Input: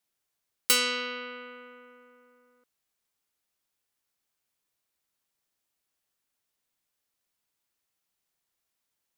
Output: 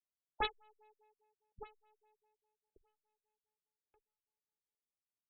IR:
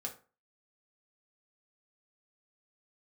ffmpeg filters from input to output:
-filter_complex "[0:a]equalizer=f=1.1k:t=o:w=0.29:g=-12.5,asetrate=76440,aresample=44100,asplit=2[a][b];[b]acompressor=threshold=-41dB:ratio=6,volume=0dB[c];[a][c]amix=inputs=2:normalize=0,highshelf=f=8.1k:g=8,aeval=exprs='0.596*(cos(1*acos(clip(val(0)/0.596,-1,1)))-cos(1*PI/2))+0.133*(cos(5*acos(clip(val(0)/0.596,-1,1)))-cos(5*PI/2))+0.0422*(cos(6*acos(clip(val(0)/0.596,-1,1)))-cos(6*PI/2))+0.188*(cos(7*acos(clip(val(0)/0.596,-1,1)))-cos(7*PI/2))+0.0266*(cos(8*acos(clip(val(0)/0.596,-1,1)))-cos(8*PI/2))':c=same,asoftclip=type=tanh:threshold=-12dB,asplit=2[d][e];[e]adelay=46,volume=-12.5dB[f];[d][f]amix=inputs=2:normalize=0,aecho=1:1:1179|2358|3537:0.447|0.0804|0.0145,adynamicsmooth=sensitivity=5.5:basefreq=1.2k,afftfilt=real='re*lt(b*sr/1024,210*pow(4300/210,0.5+0.5*sin(2*PI*4.9*pts/sr)))':imag='im*lt(b*sr/1024,210*pow(4300/210,0.5+0.5*sin(2*PI*4.9*pts/sr)))':win_size=1024:overlap=0.75,volume=2.5dB"

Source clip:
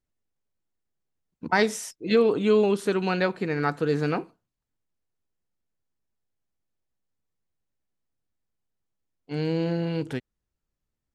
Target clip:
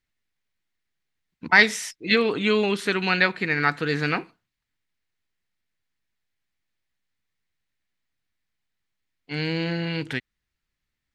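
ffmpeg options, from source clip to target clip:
-af "equalizer=f=500:t=o:w=1:g=-4,equalizer=f=2k:t=o:w=1:g=12,equalizer=f=4k:t=o:w=1:g=7"

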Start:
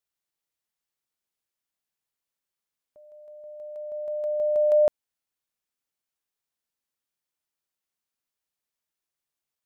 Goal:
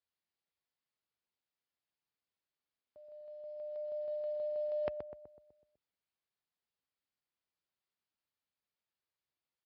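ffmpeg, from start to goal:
-filter_complex "[0:a]highpass=f=53:w=0.5412,highpass=f=53:w=1.3066,lowshelf=f=73:g=6,areverse,acompressor=threshold=-33dB:ratio=4,areverse,acrusher=bits=8:mode=log:mix=0:aa=0.000001,asplit=2[a][b];[b]adelay=125,lowpass=f=1.2k:p=1,volume=-6.5dB,asplit=2[c][d];[d]adelay=125,lowpass=f=1.2k:p=1,volume=0.54,asplit=2[e][f];[f]adelay=125,lowpass=f=1.2k:p=1,volume=0.54,asplit=2[g][h];[h]adelay=125,lowpass=f=1.2k:p=1,volume=0.54,asplit=2[i][j];[j]adelay=125,lowpass=f=1.2k:p=1,volume=0.54,asplit=2[k][l];[l]adelay=125,lowpass=f=1.2k:p=1,volume=0.54,asplit=2[m][n];[n]adelay=125,lowpass=f=1.2k:p=1,volume=0.54[o];[c][e][g][i][k][m][o]amix=inputs=7:normalize=0[p];[a][p]amix=inputs=2:normalize=0,aresample=11025,aresample=44100,volume=-4dB" -ar 48000 -c:a libmp3lame -b:a 32k

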